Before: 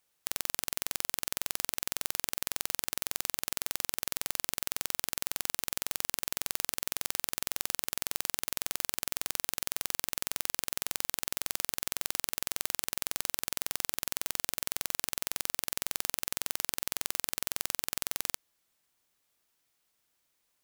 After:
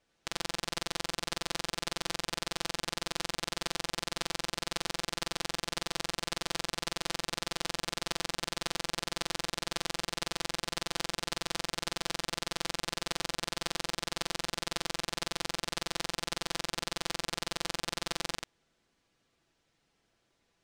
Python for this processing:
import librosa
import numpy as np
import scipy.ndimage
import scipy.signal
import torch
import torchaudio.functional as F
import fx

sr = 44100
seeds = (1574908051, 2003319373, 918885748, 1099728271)

p1 = x + 0.82 * np.pad(x, (int(6.0 * sr / 1000.0), 0))[:len(x)]
p2 = fx.sample_hold(p1, sr, seeds[0], rate_hz=1200.0, jitter_pct=0)
p3 = p1 + (p2 * 10.0 ** (-9.5 / 20.0))
p4 = fx.air_absorb(p3, sr, metres=100.0)
p5 = p4 + 10.0 ** (-3.5 / 20.0) * np.pad(p4, (int(86 * sr / 1000.0), 0))[:len(p4)]
y = p5 * 10.0 ** (2.0 / 20.0)